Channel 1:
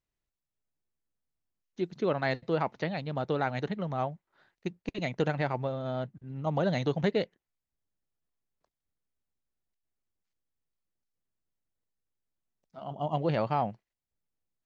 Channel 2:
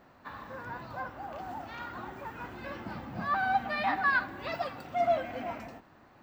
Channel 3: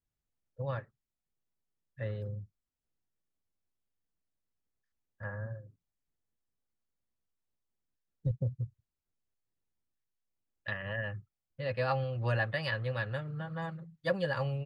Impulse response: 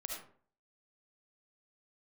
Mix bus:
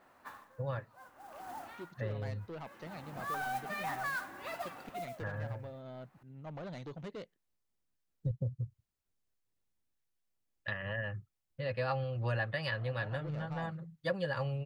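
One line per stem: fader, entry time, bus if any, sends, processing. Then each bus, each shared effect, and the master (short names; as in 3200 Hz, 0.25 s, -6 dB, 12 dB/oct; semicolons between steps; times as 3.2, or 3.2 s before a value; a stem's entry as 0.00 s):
-11.5 dB, 0.00 s, no send, soft clip -28 dBFS, distortion -10 dB
-10.0 dB, 0.00 s, no send, overdrive pedal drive 13 dB, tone 2700 Hz, clips at -16 dBFS; modulation noise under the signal 16 dB; auto duck -18 dB, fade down 0.30 s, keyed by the third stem
+1.5 dB, 0.00 s, no send, dry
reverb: off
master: compressor 1.5:1, threshold -38 dBFS, peak gain reduction 5.5 dB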